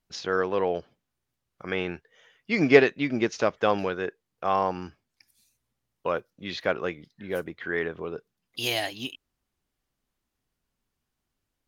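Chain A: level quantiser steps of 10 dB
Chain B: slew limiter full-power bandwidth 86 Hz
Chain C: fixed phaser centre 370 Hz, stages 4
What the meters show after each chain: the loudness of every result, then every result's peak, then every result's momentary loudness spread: -32.5, -29.0, -29.0 LUFS; -10.0, -8.5, -3.0 dBFS; 16, 13, 15 LU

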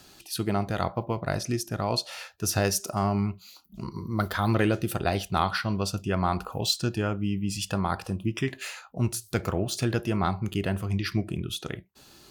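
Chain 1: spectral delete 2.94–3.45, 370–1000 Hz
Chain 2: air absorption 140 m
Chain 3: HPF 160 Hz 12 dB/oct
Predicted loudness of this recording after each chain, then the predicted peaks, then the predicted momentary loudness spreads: -28.5, -29.5, -30.0 LUFS; -8.5, -9.5, -8.5 dBFS; 8, 9, 8 LU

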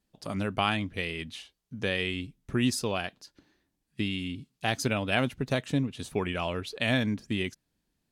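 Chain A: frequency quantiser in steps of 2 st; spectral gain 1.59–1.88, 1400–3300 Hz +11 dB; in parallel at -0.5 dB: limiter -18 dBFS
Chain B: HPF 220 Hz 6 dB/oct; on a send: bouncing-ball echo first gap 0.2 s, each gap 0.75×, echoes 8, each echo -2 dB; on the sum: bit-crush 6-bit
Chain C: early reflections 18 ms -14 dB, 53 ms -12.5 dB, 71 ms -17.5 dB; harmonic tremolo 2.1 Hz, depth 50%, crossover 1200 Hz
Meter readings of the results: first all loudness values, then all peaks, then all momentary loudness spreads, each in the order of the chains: -22.5, -27.5, -32.5 LUFS; -6.5, -9.0, -13.0 dBFS; 11, 8, 10 LU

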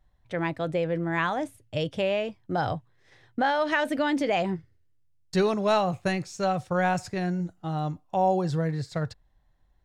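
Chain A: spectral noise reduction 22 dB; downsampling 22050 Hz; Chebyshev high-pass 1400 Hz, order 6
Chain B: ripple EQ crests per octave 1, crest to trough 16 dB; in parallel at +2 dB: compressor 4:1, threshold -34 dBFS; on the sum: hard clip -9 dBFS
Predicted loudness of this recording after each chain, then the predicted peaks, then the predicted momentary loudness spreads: -36.5, -23.5 LUFS; -17.0, -9.0 dBFS; 18, 9 LU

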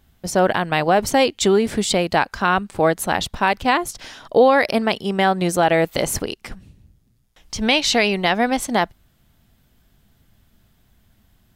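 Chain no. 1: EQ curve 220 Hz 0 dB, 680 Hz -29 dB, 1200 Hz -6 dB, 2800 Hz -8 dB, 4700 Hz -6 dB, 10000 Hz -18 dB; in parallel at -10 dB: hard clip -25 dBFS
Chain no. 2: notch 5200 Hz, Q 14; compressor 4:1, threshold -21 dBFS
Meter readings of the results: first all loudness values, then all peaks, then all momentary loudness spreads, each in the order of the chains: -25.0, -25.5 LUFS; -11.0, -9.5 dBFS; 11, 5 LU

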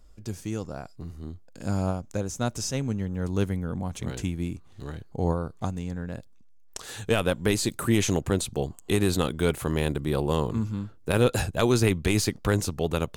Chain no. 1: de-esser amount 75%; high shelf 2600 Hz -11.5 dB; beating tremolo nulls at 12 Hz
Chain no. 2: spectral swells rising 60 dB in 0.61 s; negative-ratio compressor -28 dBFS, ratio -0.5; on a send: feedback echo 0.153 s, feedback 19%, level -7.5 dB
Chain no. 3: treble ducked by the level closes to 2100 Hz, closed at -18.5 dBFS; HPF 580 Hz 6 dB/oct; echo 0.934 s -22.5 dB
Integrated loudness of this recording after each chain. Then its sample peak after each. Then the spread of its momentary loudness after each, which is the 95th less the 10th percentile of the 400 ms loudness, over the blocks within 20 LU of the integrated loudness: -31.5, -29.0, -33.5 LUFS; -11.5, -10.0, -10.0 dBFS; 15, 7, 15 LU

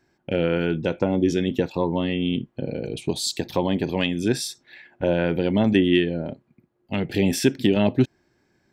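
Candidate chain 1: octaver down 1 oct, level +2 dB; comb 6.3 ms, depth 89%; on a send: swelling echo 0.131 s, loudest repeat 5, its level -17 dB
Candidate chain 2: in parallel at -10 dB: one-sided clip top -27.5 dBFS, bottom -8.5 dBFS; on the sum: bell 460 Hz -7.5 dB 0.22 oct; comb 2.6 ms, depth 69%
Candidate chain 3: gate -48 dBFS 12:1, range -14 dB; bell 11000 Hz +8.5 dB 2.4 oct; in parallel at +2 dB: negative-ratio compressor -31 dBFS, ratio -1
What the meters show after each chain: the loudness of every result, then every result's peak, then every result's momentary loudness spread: -19.0, -22.0, -20.0 LUFS; -2.0, -3.5, -2.0 dBFS; 9, 11, 7 LU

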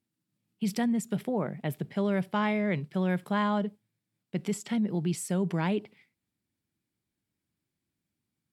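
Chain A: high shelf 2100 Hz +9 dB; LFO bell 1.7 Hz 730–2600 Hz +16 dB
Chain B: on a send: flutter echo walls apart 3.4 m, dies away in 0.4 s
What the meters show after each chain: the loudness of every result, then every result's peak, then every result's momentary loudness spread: -24.5, -27.0 LUFS; -6.0, -10.0 dBFS; 12, 8 LU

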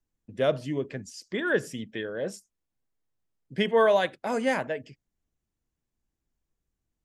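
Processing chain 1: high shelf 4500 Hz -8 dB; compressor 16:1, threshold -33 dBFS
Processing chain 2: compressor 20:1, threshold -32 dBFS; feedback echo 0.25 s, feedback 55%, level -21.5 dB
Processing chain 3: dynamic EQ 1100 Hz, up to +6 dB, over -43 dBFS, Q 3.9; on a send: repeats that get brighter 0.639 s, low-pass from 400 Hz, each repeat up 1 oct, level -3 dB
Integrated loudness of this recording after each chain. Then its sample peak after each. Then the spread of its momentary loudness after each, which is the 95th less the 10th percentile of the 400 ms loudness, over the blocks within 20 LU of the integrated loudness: -39.0, -38.5, -28.0 LUFS; -23.0, -22.0, -9.0 dBFS; 8, 8, 13 LU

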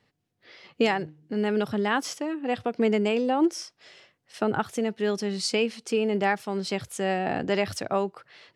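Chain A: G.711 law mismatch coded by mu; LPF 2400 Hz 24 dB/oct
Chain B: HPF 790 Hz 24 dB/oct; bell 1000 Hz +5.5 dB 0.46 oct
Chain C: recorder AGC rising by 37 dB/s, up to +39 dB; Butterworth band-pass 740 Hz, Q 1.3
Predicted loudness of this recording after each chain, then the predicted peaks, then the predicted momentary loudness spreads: -27.0, -32.0, -32.5 LUFS; -10.5, -12.0, -10.5 dBFS; 6, 12, 12 LU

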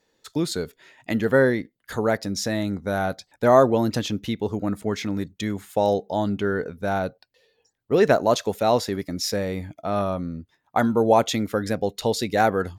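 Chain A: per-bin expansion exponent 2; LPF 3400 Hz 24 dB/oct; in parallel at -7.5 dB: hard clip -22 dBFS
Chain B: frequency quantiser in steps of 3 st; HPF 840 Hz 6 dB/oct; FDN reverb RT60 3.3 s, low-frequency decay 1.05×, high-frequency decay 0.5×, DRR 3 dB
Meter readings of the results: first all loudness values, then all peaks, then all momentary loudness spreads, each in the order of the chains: -26.5, -22.5 LUFS; -5.0, -4.5 dBFS; 15, 12 LU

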